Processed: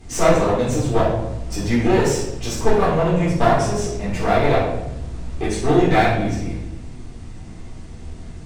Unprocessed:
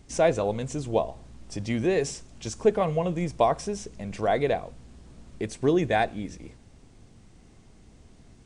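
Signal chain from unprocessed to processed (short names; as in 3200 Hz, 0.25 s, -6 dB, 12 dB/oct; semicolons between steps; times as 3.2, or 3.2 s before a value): in parallel at +1.5 dB: compressor, threshold -32 dBFS, peak gain reduction 16 dB; on the sum: one-sided clip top -29.5 dBFS; reverb RT60 0.85 s, pre-delay 3 ms, DRR -9 dB; gain -4 dB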